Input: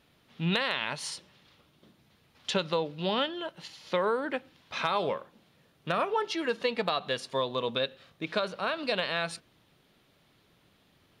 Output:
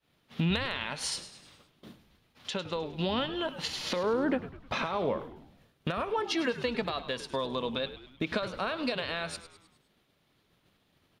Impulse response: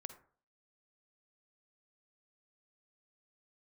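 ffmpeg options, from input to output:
-filter_complex "[0:a]acompressor=threshold=0.00501:ratio=3,asettb=1/sr,asplit=3[s0][s1][s2];[s0]atrim=end=3.964[s3];[s1]atrim=start=3.96:end=5.2,asetpts=PTS-STARTPTS,afade=t=in:d=0.004:c=qsin,afade=t=out:st=1.236:d=0.004:c=qsin,tiltshelf=f=1200:g=5.5[s4];[s2]atrim=start=5.196[s5];[s3][s4]acrossfade=d=0.004:c1=hsin:c2=qsin[s6];[s6][s5]acrossfade=d=0.004:c1=qsin:c2=hsin,acontrast=68,alimiter=level_in=1.68:limit=0.0631:level=0:latency=1:release=465,volume=0.596,adynamicequalizer=threshold=0.00112:dfrequency=240:dqfactor=4.4:tfrequency=240:tqfactor=4.4:attack=5:release=100:ratio=0.375:range=3:mode=boostabove:tftype=bell,agate=range=0.0224:threshold=0.00562:ratio=3:detection=peak,asplit=6[s7][s8][s9][s10][s11][s12];[s8]adelay=103,afreqshift=-88,volume=0.211[s13];[s9]adelay=206,afreqshift=-176,volume=0.108[s14];[s10]adelay=309,afreqshift=-264,volume=0.055[s15];[s11]adelay=412,afreqshift=-352,volume=0.0282[s16];[s12]adelay=515,afreqshift=-440,volume=0.0143[s17];[s7][s13][s14][s15][s16][s17]amix=inputs=6:normalize=0,volume=2.66"

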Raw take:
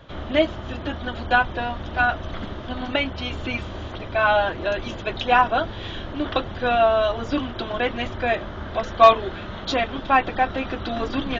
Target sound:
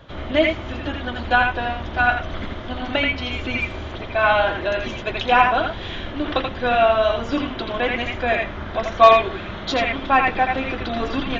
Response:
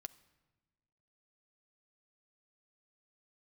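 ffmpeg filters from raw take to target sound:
-filter_complex "[0:a]asplit=2[s0][s1];[s1]equalizer=f=2200:w=2.2:g=12.5[s2];[1:a]atrim=start_sample=2205,adelay=82[s3];[s2][s3]afir=irnorm=-1:irlink=0,volume=0.794[s4];[s0][s4]amix=inputs=2:normalize=0,volume=1.12"

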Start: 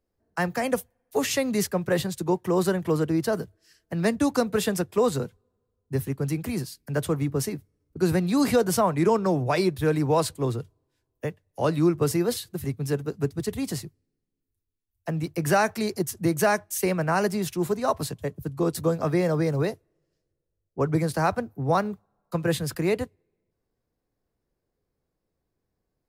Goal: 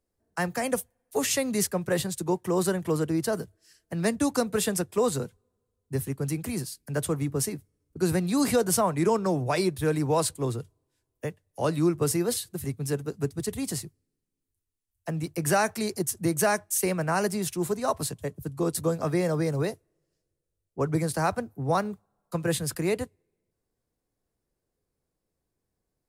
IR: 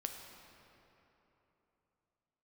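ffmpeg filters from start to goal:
-af "equalizer=f=9100:w=0.97:g=8,volume=0.75"

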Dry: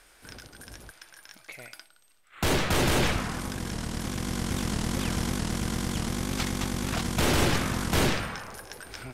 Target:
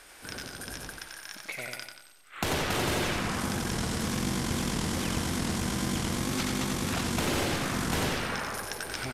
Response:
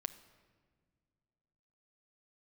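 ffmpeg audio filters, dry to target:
-filter_complex "[0:a]lowshelf=f=82:g=-8,acompressor=threshold=0.02:ratio=6,asplit=2[s0][s1];[s1]aecho=0:1:91|182|273|364|455:0.631|0.271|0.117|0.0502|0.0216[s2];[s0][s2]amix=inputs=2:normalize=0,aresample=32000,aresample=44100,volume=1.88"

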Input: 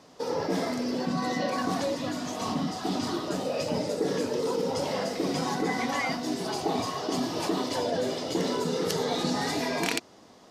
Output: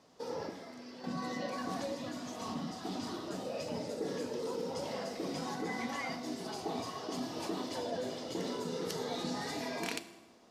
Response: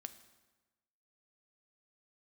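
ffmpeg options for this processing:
-filter_complex "[0:a]asettb=1/sr,asplit=3[s0][s1][s2];[s0]atrim=end=0.494[s3];[s1]atrim=start=0.49:end=1.04,asetpts=PTS-STARTPTS,afade=t=in:d=0.004:c=qsin,afade=t=out:st=0.546:d=0.004:c=qsin,acrossover=split=900|5100[s4][s5][s6];[s4]acompressor=threshold=0.00891:ratio=4[s7];[s5]acompressor=threshold=0.00562:ratio=4[s8];[s6]acompressor=threshold=0.00112:ratio=4[s9];[s7][s8][s9]amix=inputs=3:normalize=0[s10];[s2]atrim=start=1.036[s11];[s3][s10]acrossfade=d=0.004:c1=hsin:c2=qsin[s12];[s12][s11]acrossfade=d=0.004:c1=qsin:c2=hsin[s13];[1:a]atrim=start_sample=2205[s14];[s13][s14]afir=irnorm=-1:irlink=0,volume=0.596"

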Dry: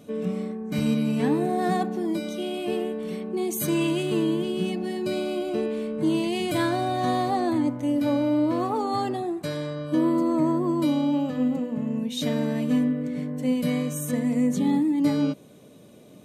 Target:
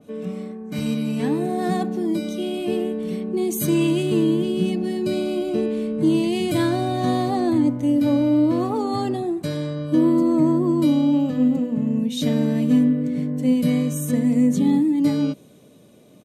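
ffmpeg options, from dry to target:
-filter_complex "[0:a]acrossover=split=430[s0][s1];[s0]dynaudnorm=f=300:g=11:m=2.51[s2];[s2][s1]amix=inputs=2:normalize=0,aresample=32000,aresample=44100,adynamicequalizer=threshold=0.0112:dfrequency=2400:dqfactor=0.7:tfrequency=2400:tqfactor=0.7:attack=5:release=100:ratio=0.375:range=2:mode=boostabove:tftype=highshelf,volume=0.841"

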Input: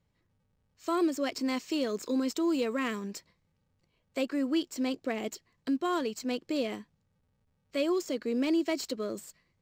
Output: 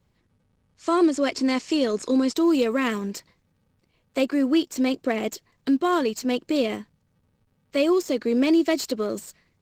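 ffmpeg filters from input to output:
-af "volume=2.66" -ar 48000 -c:a libopus -b:a 16k

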